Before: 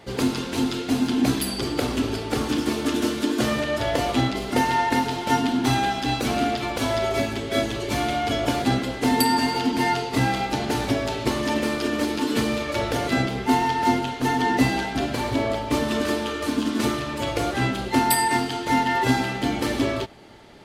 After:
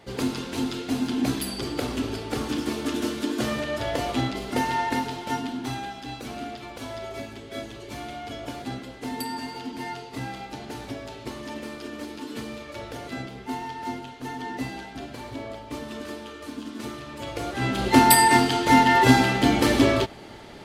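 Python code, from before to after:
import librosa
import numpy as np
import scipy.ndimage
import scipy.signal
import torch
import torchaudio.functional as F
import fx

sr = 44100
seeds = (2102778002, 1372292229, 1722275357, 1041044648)

y = fx.gain(x, sr, db=fx.line((4.9, -4.0), (5.93, -12.0), (16.83, -12.0), (17.58, -5.0), (17.87, 4.5)))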